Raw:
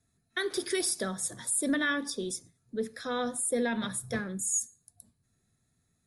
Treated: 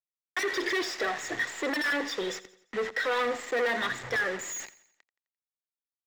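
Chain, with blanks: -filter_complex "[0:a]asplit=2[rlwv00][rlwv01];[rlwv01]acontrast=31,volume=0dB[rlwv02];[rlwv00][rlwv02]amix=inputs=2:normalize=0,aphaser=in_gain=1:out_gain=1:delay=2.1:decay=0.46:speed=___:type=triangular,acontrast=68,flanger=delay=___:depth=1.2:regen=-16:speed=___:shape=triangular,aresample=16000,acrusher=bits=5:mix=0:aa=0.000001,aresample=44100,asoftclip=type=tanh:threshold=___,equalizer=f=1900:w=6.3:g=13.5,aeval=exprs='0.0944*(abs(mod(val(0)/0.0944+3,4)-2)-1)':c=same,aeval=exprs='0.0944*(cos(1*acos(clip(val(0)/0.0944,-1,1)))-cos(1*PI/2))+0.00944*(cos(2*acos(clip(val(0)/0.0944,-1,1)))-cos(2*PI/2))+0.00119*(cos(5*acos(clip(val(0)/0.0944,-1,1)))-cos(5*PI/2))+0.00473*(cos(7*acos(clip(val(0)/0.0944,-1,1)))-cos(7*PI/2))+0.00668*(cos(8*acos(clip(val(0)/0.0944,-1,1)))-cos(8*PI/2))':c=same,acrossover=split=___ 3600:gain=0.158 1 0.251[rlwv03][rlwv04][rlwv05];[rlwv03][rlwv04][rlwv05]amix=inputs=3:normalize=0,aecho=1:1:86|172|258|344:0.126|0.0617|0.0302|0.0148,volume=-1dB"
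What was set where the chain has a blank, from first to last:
1.5, 1.6, 0.4, -23.5dB, 290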